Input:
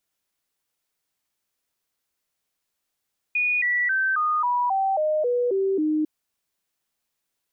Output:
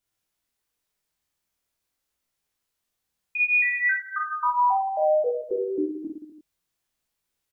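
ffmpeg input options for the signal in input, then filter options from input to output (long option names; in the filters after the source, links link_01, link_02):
-f lavfi -i "aevalsrc='0.106*clip(min(mod(t,0.27),0.27-mod(t,0.27))/0.005,0,1)*sin(2*PI*2460*pow(2,-floor(t/0.27)/3)*mod(t,0.27))':duration=2.7:sample_rate=44100"
-filter_complex "[0:a]lowshelf=frequency=110:gain=9.5,asplit=2[link_01][link_02];[link_02]aecho=0:1:50|107.5|173.6|249.7|337.1:0.631|0.398|0.251|0.158|0.1[link_03];[link_01][link_03]amix=inputs=2:normalize=0,flanger=delay=19:depth=5.5:speed=0.41"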